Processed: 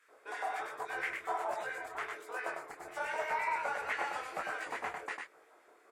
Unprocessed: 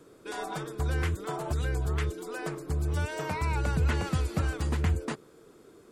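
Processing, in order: LFO high-pass square 5.9 Hz 720–2000 Hz; resonant high shelf 2.6 kHz -6.5 dB, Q 1.5; on a send: delay 100 ms -4.5 dB; on the sum: detune thickener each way 45 cents

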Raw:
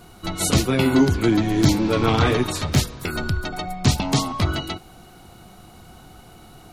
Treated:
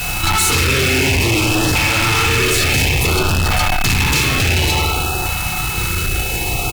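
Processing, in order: rattle on loud lows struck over -22 dBFS, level -9 dBFS; peaking EQ 350 Hz -6 dB 1.7 oct; comb 2.3 ms, depth 66%; de-hum 72.02 Hz, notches 33; compression, threshold -25 dBFS, peak gain reduction 13 dB; spring tank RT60 1.3 s, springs 35/59 ms, chirp 50 ms, DRR -0.5 dB; word length cut 8-bit, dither triangular; fuzz box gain 40 dB, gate -48 dBFS; LFO notch saw up 0.57 Hz 340–2600 Hz; whistle 2.6 kHz -24 dBFS

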